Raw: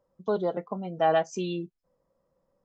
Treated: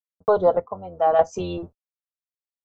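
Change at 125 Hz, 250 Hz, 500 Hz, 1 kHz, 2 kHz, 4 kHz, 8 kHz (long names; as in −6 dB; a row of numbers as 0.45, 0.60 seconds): +1.0 dB, 0.0 dB, +7.5 dB, +6.0 dB, −0.5 dB, −2.5 dB, can't be measured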